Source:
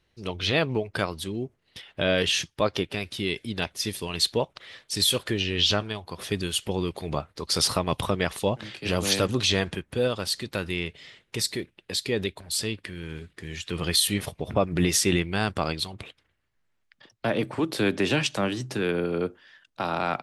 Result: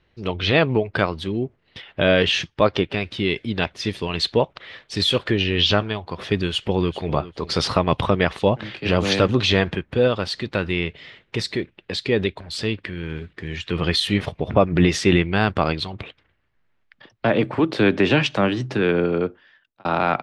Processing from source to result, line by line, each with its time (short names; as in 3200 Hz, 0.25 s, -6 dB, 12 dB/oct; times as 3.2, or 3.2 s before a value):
6.38–7.13 echo throw 0.4 s, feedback 10%, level -16 dB
19.06–19.85 fade out
whole clip: LPF 3200 Hz 12 dB/oct; gain +7 dB